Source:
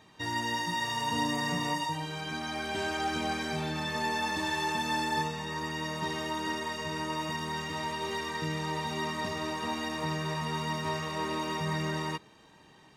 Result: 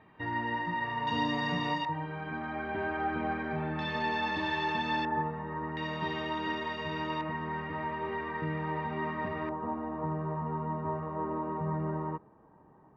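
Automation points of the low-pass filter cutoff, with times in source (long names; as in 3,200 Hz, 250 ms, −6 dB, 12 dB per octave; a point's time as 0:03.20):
low-pass filter 24 dB per octave
2,300 Hz
from 0:01.07 3,800 Hz
from 0:01.85 2,000 Hz
from 0:03.79 3,700 Hz
from 0:05.05 1,600 Hz
from 0:05.77 3,500 Hz
from 0:07.21 2,100 Hz
from 0:09.49 1,200 Hz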